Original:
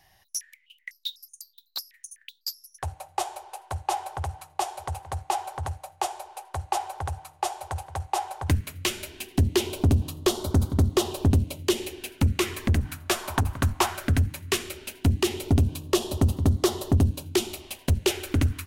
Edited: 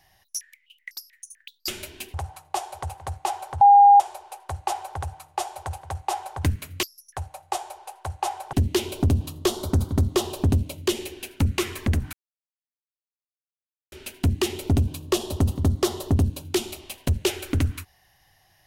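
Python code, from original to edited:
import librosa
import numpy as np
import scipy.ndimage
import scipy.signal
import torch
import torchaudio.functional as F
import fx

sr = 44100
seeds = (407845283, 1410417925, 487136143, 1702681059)

y = fx.edit(x, sr, fx.cut(start_s=0.97, length_s=0.81),
    fx.swap(start_s=2.49, length_s=1.7, other_s=8.88, other_length_s=0.46),
    fx.bleep(start_s=5.66, length_s=0.39, hz=809.0, db=-8.5),
    fx.silence(start_s=12.94, length_s=1.79), tone=tone)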